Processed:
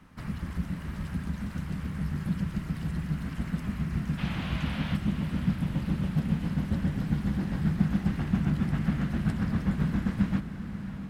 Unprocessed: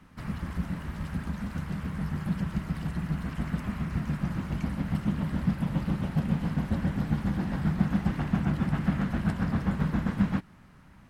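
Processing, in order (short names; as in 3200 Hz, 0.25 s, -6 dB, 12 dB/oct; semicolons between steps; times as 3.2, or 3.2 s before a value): dynamic EQ 830 Hz, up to -6 dB, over -46 dBFS, Q 0.74; 4.17–4.95 band noise 510–3300 Hz -41 dBFS; diffused feedback echo 0.632 s, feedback 56%, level -10 dB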